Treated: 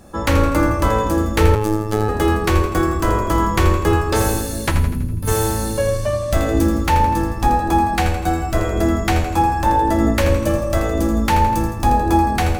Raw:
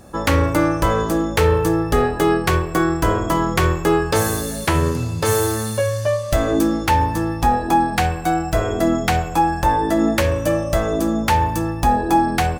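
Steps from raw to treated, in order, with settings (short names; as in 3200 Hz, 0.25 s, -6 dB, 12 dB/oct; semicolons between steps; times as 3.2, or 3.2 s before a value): octaver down 2 oct, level -1 dB; 4.71–5.28 spectral gain 290–9200 Hz -18 dB; split-band echo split 400 Hz, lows 0.222 s, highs 82 ms, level -9 dB; reverb, pre-delay 3 ms, DRR 7.5 dB; 1.55–2.09 robotiser 107 Hz; gain -1.5 dB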